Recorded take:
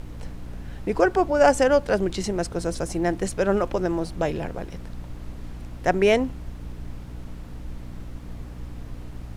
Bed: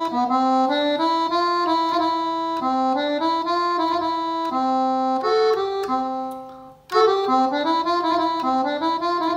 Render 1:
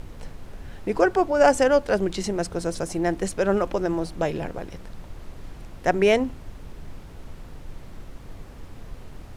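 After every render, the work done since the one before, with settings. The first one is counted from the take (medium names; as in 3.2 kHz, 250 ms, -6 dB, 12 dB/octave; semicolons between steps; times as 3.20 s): de-hum 60 Hz, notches 5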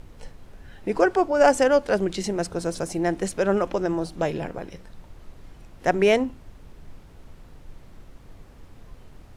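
noise print and reduce 6 dB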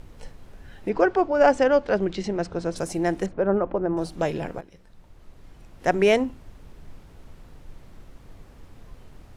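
0.89–2.76 s: distance through air 130 m; 3.26–3.97 s: low-pass 1.2 kHz; 4.61–5.94 s: fade in, from -13 dB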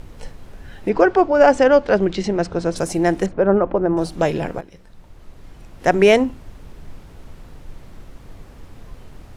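trim +6.5 dB; peak limiter -3 dBFS, peak gain reduction 3 dB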